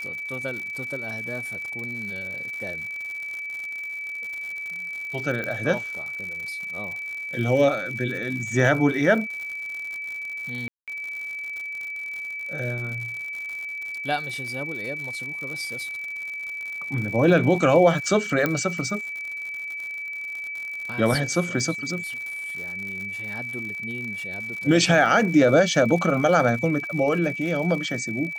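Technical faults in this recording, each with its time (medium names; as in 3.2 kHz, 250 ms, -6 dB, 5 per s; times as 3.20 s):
crackle 120 per s -32 dBFS
whine 2.3 kHz -30 dBFS
5.44 s: pop -17 dBFS
10.68–10.88 s: dropout 197 ms
18.46 s: pop -9 dBFS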